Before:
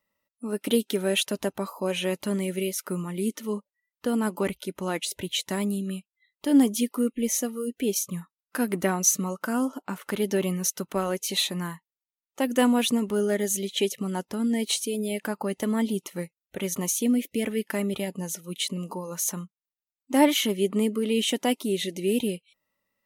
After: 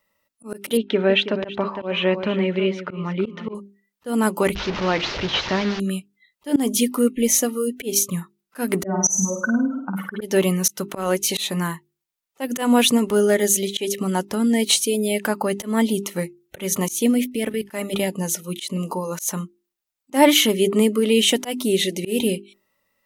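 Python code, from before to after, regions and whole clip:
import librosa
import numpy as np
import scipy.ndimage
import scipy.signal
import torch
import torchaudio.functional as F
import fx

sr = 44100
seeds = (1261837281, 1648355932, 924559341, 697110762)

y = fx.chain(x, sr, fx.lowpass(hz=3200.0, slope=24),
    fx.echo_feedback(ms=325, feedback_pct=17, wet_db=-11.5), at=(0.77, 3.55))
y = fx.chain(y, sr, fx.delta_mod(bps=32000, step_db=-29.5),
    fx.lowpass(hz=4200.0, slope=12), at=(4.55, 5.8))
y = fx.chain(y, sr, fx.spec_expand(power=2.5),
    fx.room_flutter(wall_m=8.9, rt60_s=0.54), at=(8.83, 10.22))
y = fx.chain(y, sr, fx.level_steps(step_db=15),
    fx.notch(hz=6800.0, q=7.4), at=(17.24, 17.66))
y = fx.peak_eq(y, sr, hz=230.0, db=-2.5, octaves=1.1)
y = fx.hum_notches(y, sr, base_hz=50, count=8)
y = fx.auto_swell(y, sr, attack_ms=159.0)
y = F.gain(torch.from_numpy(y), 9.0).numpy()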